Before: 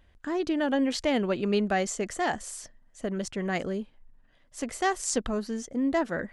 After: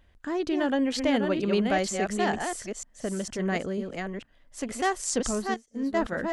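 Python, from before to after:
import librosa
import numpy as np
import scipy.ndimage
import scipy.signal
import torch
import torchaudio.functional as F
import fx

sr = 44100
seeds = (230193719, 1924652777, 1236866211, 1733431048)

y = fx.reverse_delay(x, sr, ms=472, wet_db=-4.5)
y = fx.upward_expand(y, sr, threshold_db=-41.0, expansion=2.5, at=(5.54, 5.97))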